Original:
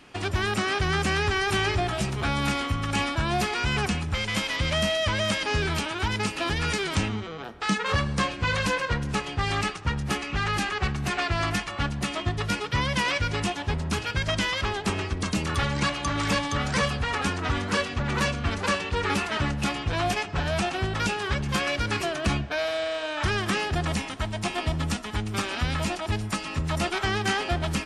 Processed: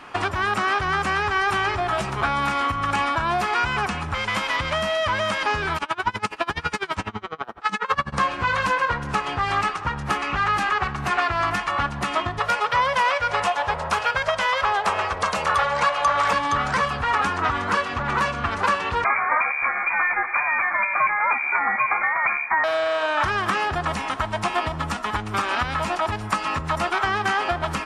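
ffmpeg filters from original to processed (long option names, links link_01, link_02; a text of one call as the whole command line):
ffmpeg -i in.wav -filter_complex "[0:a]asplit=3[link_01][link_02][link_03];[link_01]afade=type=out:start_time=5.77:duration=0.02[link_04];[link_02]aeval=exprs='val(0)*pow(10,-28*(0.5-0.5*cos(2*PI*12*n/s))/20)':channel_layout=same,afade=type=in:start_time=5.77:duration=0.02,afade=type=out:start_time=8.12:duration=0.02[link_05];[link_03]afade=type=in:start_time=8.12:duration=0.02[link_06];[link_04][link_05][link_06]amix=inputs=3:normalize=0,asettb=1/sr,asplit=3[link_07][link_08][link_09];[link_07]atrim=end=12.394[link_10];[link_08]atrim=start=12.39:end=16.33,asetpts=PTS-STARTPTS,afade=type=in:duration=0.004:curve=qsin,afade=type=out:start_time=3.936:duration=0.004:curve=qsin,lowshelf=frequency=410:width_type=q:width=3:gain=-7.5[link_11];[link_09]atrim=start=16.326[link_12];[link_10][link_11]acrossfade=duration=0.004:curve1=hsin:curve2=qsin[link_13];[link_13][link_12]acrossfade=duration=0.004:curve1=qsin:curve2=hsin,asettb=1/sr,asplit=3[link_14][link_15][link_16];[link_14]atrim=end=19.044[link_17];[link_15]atrim=start=19.04:end=22.64,asetpts=PTS-STARTPTS,afade=type=in:duration=0.004:curve=qsin,afade=type=out:start_time=3.596:duration=0.004:curve=qsin,lowpass=frequency=2100:width_type=q:width=0.5098,lowpass=frequency=2100:width_type=q:width=0.6013,lowpass=frequency=2100:width_type=q:width=0.9,lowpass=frequency=2100:width_type=q:width=2.563,afreqshift=-2500[link_18];[link_16]atrim=start=22.636[link_19];[link_17][link_18]acrossfade=duration=0.004:curve1=hsin:curve2=qsin[link_20];[link_20][link_19]acrossfade=duration=0.004:curve1=qsin:curve2=hsin,acompressor=threshold=-29dB:ratio=6,equalizer=frequency=1100:width=0.73:gain=14.5,volume=1.5dB" out.wav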